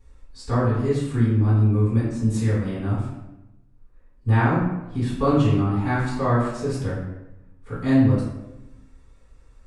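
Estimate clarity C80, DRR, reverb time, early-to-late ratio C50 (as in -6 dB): 4.0 dB, -10.5 dB, 0.95 s, 0.5 dB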